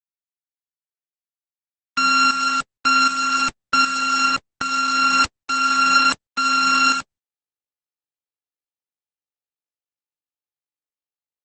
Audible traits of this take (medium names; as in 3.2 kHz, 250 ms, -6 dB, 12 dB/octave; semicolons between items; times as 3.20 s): a buzz of ramps at a fixed pitch in blocks of 32 samples; tremolo saw up 1.3 Hz, depth 65%; a quantiser's noise floor 6-bit, dither none; Opus